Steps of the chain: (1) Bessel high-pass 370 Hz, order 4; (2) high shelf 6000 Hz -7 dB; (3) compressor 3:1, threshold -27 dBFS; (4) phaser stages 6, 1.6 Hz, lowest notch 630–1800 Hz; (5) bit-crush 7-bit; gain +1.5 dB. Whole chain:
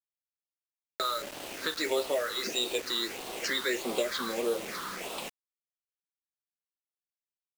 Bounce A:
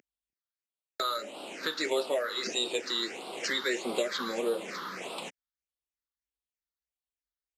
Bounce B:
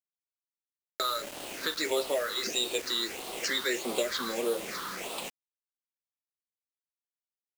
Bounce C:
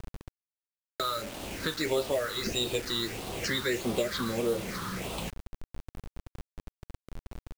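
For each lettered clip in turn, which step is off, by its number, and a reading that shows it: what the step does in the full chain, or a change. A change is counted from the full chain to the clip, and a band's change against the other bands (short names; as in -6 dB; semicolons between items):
5, distortion -12 dB; 2, 8 kHz band +2.5 dB; 1, 125 Hz band +17.5 dB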